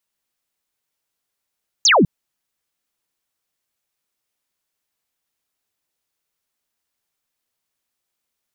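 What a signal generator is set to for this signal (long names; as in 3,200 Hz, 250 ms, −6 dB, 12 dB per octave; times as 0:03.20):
single falling chirp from 7,100 Hz, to 140 Hz, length 0.20 s sine, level −9.5 dB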